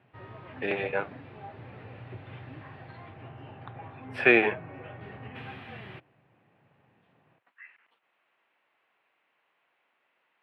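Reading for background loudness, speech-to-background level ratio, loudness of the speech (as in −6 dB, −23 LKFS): −45.0 LKFS, 19.5 dB, −25.5 LKFS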